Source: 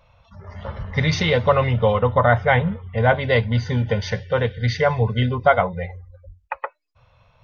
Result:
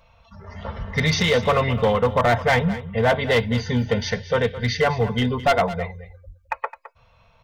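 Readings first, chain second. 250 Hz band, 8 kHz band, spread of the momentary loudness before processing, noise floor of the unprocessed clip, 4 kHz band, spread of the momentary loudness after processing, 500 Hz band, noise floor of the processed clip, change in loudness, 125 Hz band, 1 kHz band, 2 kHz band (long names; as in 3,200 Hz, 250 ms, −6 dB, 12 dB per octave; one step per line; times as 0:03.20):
+1.5 dB, can't be measured, 15 LU, −60 dBFS, +2.5 dB, 12 LU, −1.0 dB, −58 dBFS, −1.5 dB, −3.5 dB, −1.5 dB, −0.5 dB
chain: high-shelf EQ 4,100 Hz +4.5 dB
comb filter 4.4 ms, depth 40%
hard clipping −13 dBFS, distortion −12 dB
single-tap delay 213 ms −15 dB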